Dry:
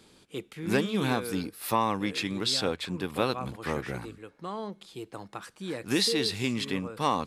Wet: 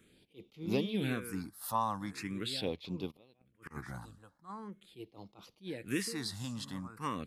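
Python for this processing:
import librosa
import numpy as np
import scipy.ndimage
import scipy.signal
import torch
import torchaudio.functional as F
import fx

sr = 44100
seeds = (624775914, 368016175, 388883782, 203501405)

y = fx.phaser_stages(x, sr, stages=4, low_hz=380.0, high_hz=1700.0, hz=0.42, feedback_pct=5)
y = fx.gate_flip(y, sr, shuts_db=-28.0, range_db=-29, at=(3.1, 3.7), fade=0.02)
y = fx.attack_slew(y, sr, db_per_s=280.0)
y = F.gain(torch.from_numpy(y), -5.0).numpy()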